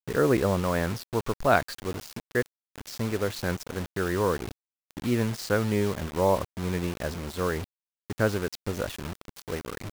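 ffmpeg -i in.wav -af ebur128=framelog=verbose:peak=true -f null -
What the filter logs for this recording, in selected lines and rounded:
Integrated loudness:
  I:         -28.6 LUFS
  Threshold: -39.0 LUFS
Loudness range:
  LRA:         3.3 LU
  Threshold: -49.3 LUFS
  LRA low:   -31.3 LUFS
  LRA high:  -28.0 LUFS
True peak:
  Peak:       -6.4 dBFS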